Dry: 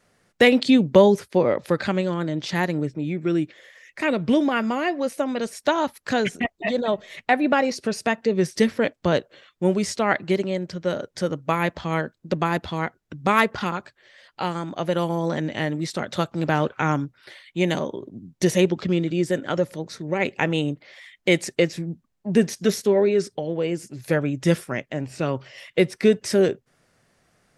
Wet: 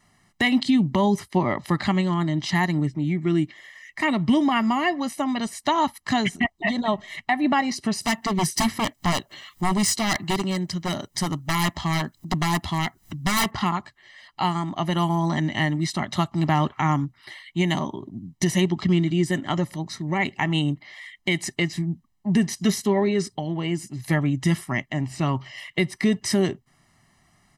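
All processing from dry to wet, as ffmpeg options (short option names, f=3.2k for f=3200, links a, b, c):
-filter_complex "[0:a]asettb=1/sr,asplit=3[a][b][c];[a]atrim=end=8.014[d];[b]atrim=start=8.01:end=13.51,asetpts=PTS-STARTPTS,afade=t=in:d=0.004:c=qsin,afade=t=out:st=5.496:d=0.004:c=qsin,aemphasis=mode=production:type=50kf,aeval=exprs='0.126*(abs(mod(val(0)/0.126+3,4)-2)-1)':c=same,acompressor=mode=upward:threshold=-36dB:ratio=2.5:attack=3.2:release=140:knee=2.83:detection=peak[e];[c]atrim=start=13.506[f];[d][e]acrossfade=d=0.004:c1=hsin:c2=qsin[g];[g][f]acrossfade=d=0.004:c1=qsin:c2=hsin,aecho=1:1:1:0.91,alimiter=limit=-11dB:level=0:latency=1:release=158"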